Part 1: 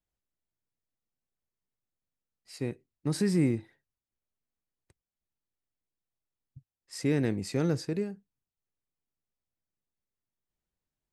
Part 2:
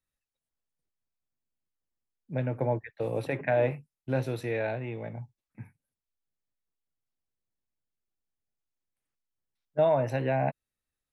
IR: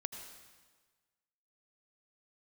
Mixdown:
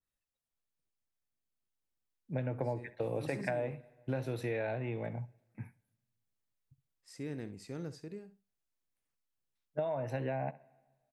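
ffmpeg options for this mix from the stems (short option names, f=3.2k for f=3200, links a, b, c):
-filter_complex "[0:a]adelay=150,volume=-14dB,asplit=2[a][b];[b]volume=-14dB[c];[1:a]dynaudnorm=f=430:g=9:m=3dB,adynamicequalizer=threshold=0.0112:dfrequency=1900:dqfactor=0.7:tfrequency=1900:tqfactor=0.7:attack=5:release=100:ratio=0.375:range=2:mode=cutabove:tftype=highshelf,volume=-4dB,asplit=3[d][e][f];[e]volume=-21.5dB[g];[f]volume=-19.5dB[h];[2:a]atrim=start_sample=2205[i];[g][i]afir=irnorm=-1:irlink=0[j];[c][h]amix=inputs=2:normalize=0,aecho=0:1:66|132|198:1|0.17|0.0289[k];[a][d][j][k]amix=inputs=4:normalize=0,acompressor=threshold=-31dB:ratio=10"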